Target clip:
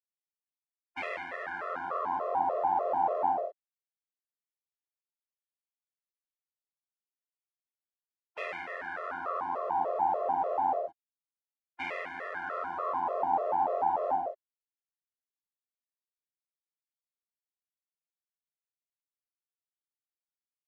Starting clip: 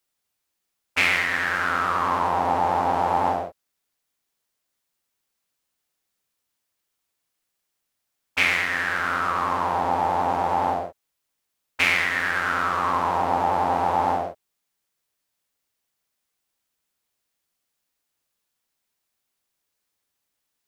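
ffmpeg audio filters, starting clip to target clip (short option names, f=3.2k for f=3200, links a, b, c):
-af "acrusher=bits=7:mix=0:aa=0.5,bandpass=f=620:t=q:w=1.8:csg=0,afftfilt=real='re*gt(sin(2*PI*3.4*pts/sr)*(1-2*mod(floor(b*sr/1024/350),2)),0)':imag='im*gt(sin(2*PI*3.4*pts/sr)*(1-2*mod(floor(b*sr/1024/350),2)),0)':win_size=1024:overlap=0.75"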